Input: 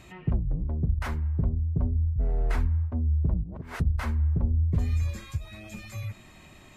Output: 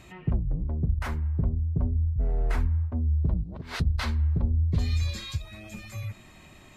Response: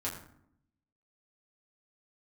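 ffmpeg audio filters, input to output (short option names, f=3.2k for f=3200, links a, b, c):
-filter_complex "[0:a]asettb=1/sr,asplit=3[a][b][c];[a]atrim=end=3.034[d];[b]atrim=start=3.03:end=5.42,asetpts=PTS-STARTPTS,afade=t=in:d=0.004:c=qsin,afade=t=out:st=2.386:d=0.004:c=qsin,equalizer=f=4.1k:w=1.2:g=14.5[e];[c]atrim=start=5.416[f];[d][e]acrossfade=d=0.004:c1=hsin:c2=qsin[g];[g][f]acrossfade=d=0.004:c1=qsin:c2=hsin"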